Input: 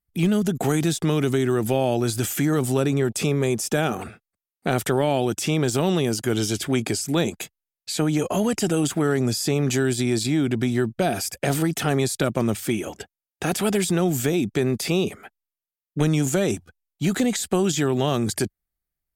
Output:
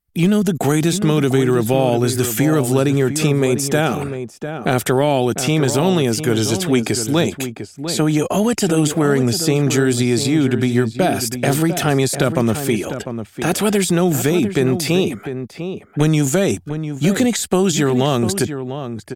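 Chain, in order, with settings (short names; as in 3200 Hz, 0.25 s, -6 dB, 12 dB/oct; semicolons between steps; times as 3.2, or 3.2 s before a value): outdoor echo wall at 120 m, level -9 dB; gain +5.5 dB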